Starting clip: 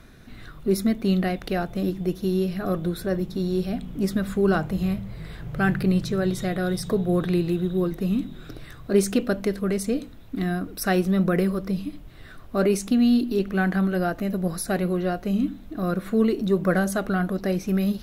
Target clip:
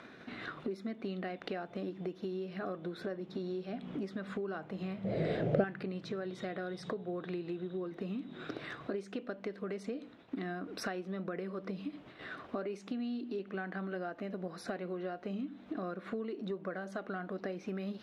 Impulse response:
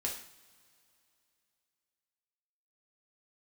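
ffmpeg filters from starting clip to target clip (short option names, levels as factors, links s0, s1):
-filter_complex "[0:a]agate=range=0.0224:threshold=0.0158:ratio=3:detection=peak,asplit=2[s0][s1];[s1]acompressor=mode=upward:threshold=0.0794:ratio=2.5,volume=1.19[s2];[s0][s2]amix=inputs=2:normalize=0,highpass=280,lowpass=3200,acompressor=threshold=0.0316:ratio=12,asettb=1/sr,asplit=3[s3][s4][s5];[s3]atrim=end=5.044[s6];[s4]atrim=start=5.04:end=5.64,asetpts=PTS-STARTPTS,afade=t=in:d=0.004:c=qsin,afade=t=out:st=0.596:d=0.004:c=qsin,lowshelf=f=780:t=q:w=3:g=8.5[s7];[s5]atrim=start=5.636[s8];[s6][s7]acrossfade=d=0.004:c1=hsin:c2=qsin[s9];[s9][s8]acrossfade=d=0.004:c1=qsin:c2=hsin,volume=0.531"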